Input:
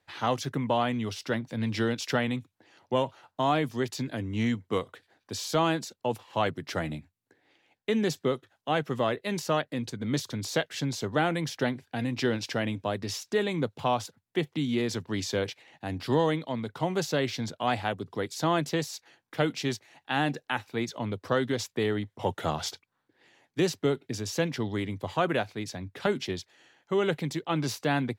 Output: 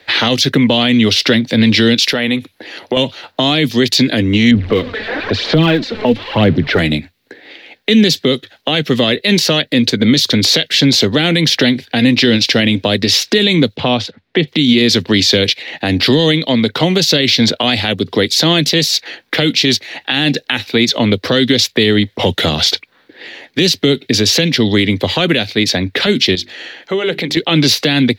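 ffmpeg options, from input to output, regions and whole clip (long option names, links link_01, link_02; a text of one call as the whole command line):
ffmpeg -i in.wav -filter_complex "[0:a]asettb=1/sr,asplit=3[link_01][link_02][link_03];[link_01]atrim=end=2.064[link_04];[link_02]atrim=start=2.06:end=2.97,asetpts=PTS-STARTPTS,afade=type=in:duration=0.004:curve=qsin,afade=type=out:start_time=0.906:duration=0.004:curve=qsin,equalizer=frequency=11000:width_type=o:width=0.3:gain=12.5,acompressor=threshold=-40dB:ratio=2.5:attack=3.2:release=140:knee=1:detection=peak[link_05];[link_03]atrim=start=2.966[link_06];[link_04][link_05]acrossfade=duration=0.004:curve1=hsin:curve2=qsin[link_07];[link_07][link_06]acrossfade=duration=0.004:curve1=qsin:curve2=hsin,asettb=1/sr,asplit=3[link_08][link_09][link_10];[link_08]atrim=end=4.514[link_11];[link_09]atrim=start=4.51:end=6.79,asetpts=PTS-STARTPTS,afade=type=in:duration=0.004:curve=qsin,afade=type=out:start_time=2.276:duration=0.004:curve=qsin,aeval=exprs='val(0)+0.5*0.0106*sgn(val(0))':channel_layout=same,lowpass=1700,aphaser=in_gain=1:out_gain=1:delay=4.7:decay=0.57:speed=1:type=sinusoidal[link_12];[link_10]atrim=start=6.786[link_13];[link_11][link_12]acrossfade=duration=0.004:curve1=hsin:curve2=qsin[link_14];[link_14][link_13]acrossfade=duration=0.004:curve1=qsin:curve2=hsin,asettb=1/sr,asplit=3[link_15][link_16][link_17];[link_15]atrim=end=13.764[link_18];[link_16]atrim=start=13.76:end=14.48,asetpts=PTS-STARTPTS,afade=type=in:duration=0.004:curve=qsin,afade=type=out:start_time=0.716:duration=0.004:curve=qsin,lowpass=frequency=3600:poles=1,aemphasis=mode=reproduction:type=50kf[link_19];[link_17]atrim=start=14.476[link_20];[link_18][link_19]acrossfade=duration=0.004:curve1=hsin:curve2=qsin[link_21];[link_21][link_20]acrossfade=duration=0.004:curve1=qsin:curve2=hsin,asettb=1/sr,asplit=3[link_22][link_23][link_24];[link_22]atrim=end=26.354[link_25];[link_23]atrim=start=26.35:end=27.37,asetpts=PTS-STARTPTS,afade=type=in:duration=0.004:curve=qsin,afade=type=out:start_time=1.016:duration=0.004:curve=qsin,acompressor=threshold=-47dB:ratio=2:attack=3.2:release=140:knee=1:detection=peak,bandreject=frequency=50:width_type=h:width=6,bandreject=frequency=100:width_type=h:width=6,bandreject=frequency=150:width_type=h:width=6,bandreject=frequency=200:width_type=h:width=6,bandreject=frequency=250:width_type=h:width=6,bandreject=frequency=300:width_type=h:width=6,bandreject=frequency=350:width_type=h:width=6,bandreject=frequency=400:width_type=h:width=6[link_26];[link_24]atrim=start=27.366[link_27];[link_25][link_26]acrossfade=duration=0.004:curve1=hsin:curve2=qsin[link_28];[link_28][link_27]acrossfade=duration=0.004:curve1=qsin:curve2=hsin,equalizer=frequency=125:width_type=o:width=1:gain=-7,equalizer=frequency=250:width_type=o:width=1:gain=4,equalizer=frequency=500:width_type=o:width=1:gain=7,equalizer=frequency=1000:width_type=o:width=1:gain=-4,equalizer=frequency=2000:width_type=o:width=1:gain=8,equalizer=frequency=4000:width_type=o:width=1:gain=11,equalizer=frequency=8000:width_type=o:width=1:gain=-8,acrossover=split=230|3000[link_29][link_30][link_31];[link_30]acompressor=threshold=-36dB:ratio=6[link_32];[link_29][link_32][link_31]amix=inputs=3:normalize=0,alimiter=level_in=22.5dB:limit=-1dB:release=50:level=0:latency=1,volume=-1dB" out.wav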